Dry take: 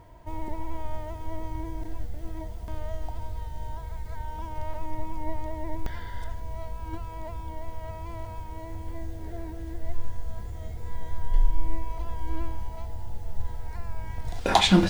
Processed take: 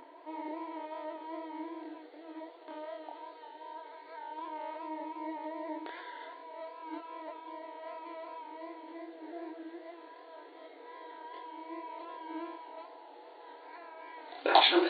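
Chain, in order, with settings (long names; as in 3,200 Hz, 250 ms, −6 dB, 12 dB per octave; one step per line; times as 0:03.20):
brick-wall band-pass 270–4,500 Hz
upward compression, threshold −46 dBFS
chorus effect 2.6 Hz, depth 7.1 ms
level +1 dB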